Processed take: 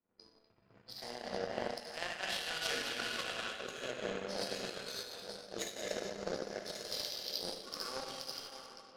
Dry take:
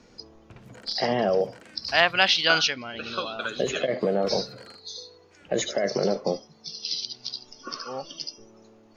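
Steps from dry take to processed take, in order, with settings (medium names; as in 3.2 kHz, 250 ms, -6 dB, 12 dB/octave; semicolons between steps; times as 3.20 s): chunks repeated in reverse 688 ms, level -11 dB; reverse; compression 10:1, threshold -33 dBFS, peak gain reduction 19 dB; reverse; bass shelf 130 Hz -7.5 dB; plate-style reverb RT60 2.3 s, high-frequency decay 1×, DRR -4.5 dB; power-law waveshaper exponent 2; level-controlled noise filter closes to 1.5 kHz, open at -49 dBFS; on a send: repeats whose band climbs or falls 247 ms, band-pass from 2.6 kHz, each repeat -0.7 oct, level -6.5 dB; on the sum: random flutter of the level, depth 60%; trim +5 dB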